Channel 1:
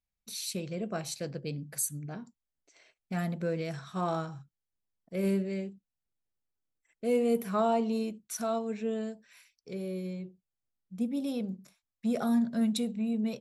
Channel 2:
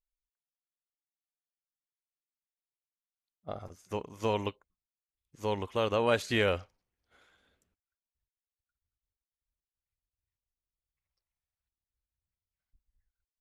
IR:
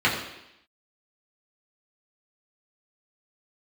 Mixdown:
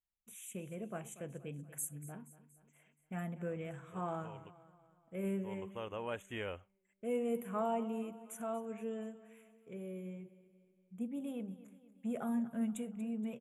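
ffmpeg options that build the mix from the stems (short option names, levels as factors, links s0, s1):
-filter_complex "[0:a]volume=0.376,asplit=2[s0][s1];[s1]volume=0.15[s2];[1:a]volume=0.2,afade=t=in:st=5.41:d=0.25:silence=0.316228[s3];[s2]aecho=0:1:237|474|711|948|1185|1422|1659:1|0.51|0.26|0.133|0.0677|0.0345|0.0176[s4];[s0][s3][s4]amix=inputs=3:normalize=0,asuperstop=centerf=4700:order=8:qfactor=1.4,equalizer=f=940:t=o:w=0.34:g=2.5"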